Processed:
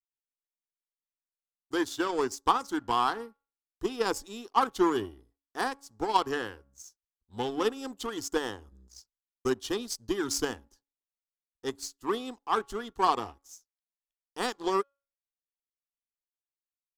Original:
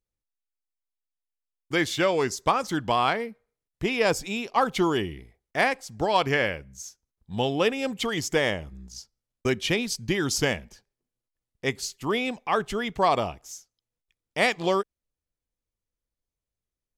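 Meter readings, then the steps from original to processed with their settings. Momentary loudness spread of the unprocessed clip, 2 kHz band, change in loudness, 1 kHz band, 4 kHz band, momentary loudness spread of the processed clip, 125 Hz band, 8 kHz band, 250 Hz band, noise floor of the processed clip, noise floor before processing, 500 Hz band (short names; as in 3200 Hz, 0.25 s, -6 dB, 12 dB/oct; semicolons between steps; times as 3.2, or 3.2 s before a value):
14 LU, -10.0 dB, -5.0 dB, -2.5 dB, -7.0 dB, 14 LU, -14.5 dB, -4.5 dB, -4.0 dB, under -85 dBFS, under -85 dBFS, -6.0 dB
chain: fixed phaser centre 600 Hz, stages 6; de-hum 279.1 Hz, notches 5; power-law curve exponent 1.4; gain +2.5 dB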